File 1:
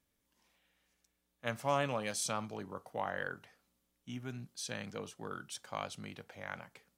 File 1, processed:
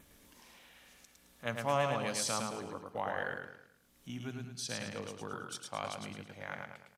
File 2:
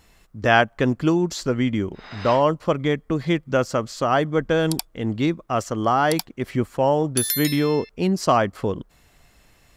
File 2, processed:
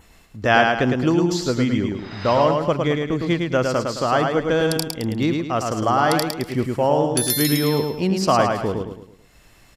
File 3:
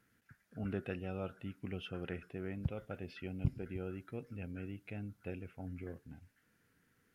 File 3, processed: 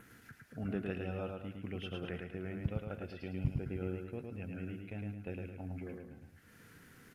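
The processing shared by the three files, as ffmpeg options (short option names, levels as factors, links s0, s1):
-af "agate=range=0.398:threshold=0.00447:ratio=16:detection=peak,adynamicequalizer=threshold=0.00282:dfrequency=4900:dqfactor=3.6:tfrequency=4900:tqfactor=3.6:attack=5:release=100:ratio=0.375:range=2.5:mode=boostabove:tftype=bell,acompressor=mode=upward:threshold=0.00891:ratio=2.5,aecho=1:1:108|216|324|432|540:0.631|0.252|0.101|0.0404|0.0162,aresample=32000,aresample=44100"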